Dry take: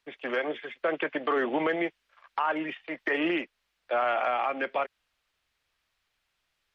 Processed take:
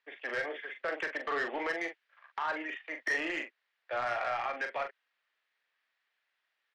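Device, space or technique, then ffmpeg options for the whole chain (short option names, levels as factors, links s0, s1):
intercom: -filter_complex "[0:a]highpass=430,lowpass=4200,equalizer=f=1800:t=o:w=0.46:g=8,asoftclip=type=tanh:threshold=0.0891,asplit=2[s0][s1];[s1]adelay=42,volume=0.447[s2];[s0][s2]amix=inputs=2:normalize=0,volume=0.531"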